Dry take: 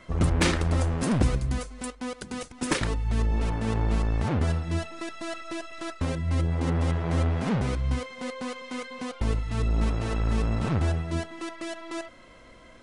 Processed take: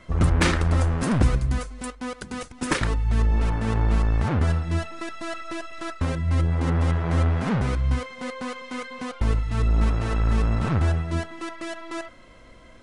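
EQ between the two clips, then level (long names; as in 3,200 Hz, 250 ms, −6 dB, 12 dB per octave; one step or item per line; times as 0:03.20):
dynamic equaliser 1,400 Hz, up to +5 dB, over −45 dBFS, Q 1
low-shelf EQ 140 Hz +5.5 dB
0.0 dB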